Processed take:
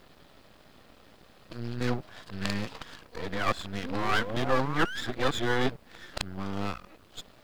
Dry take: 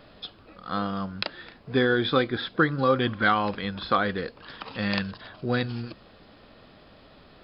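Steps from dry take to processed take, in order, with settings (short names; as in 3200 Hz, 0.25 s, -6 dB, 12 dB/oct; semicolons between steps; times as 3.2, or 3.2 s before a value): whole clip reversed; painted sound rise, 3.83–5.01, 240–1800 Hz -33 dBFS; half-wave rectifier; requantised 12-bit, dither triangular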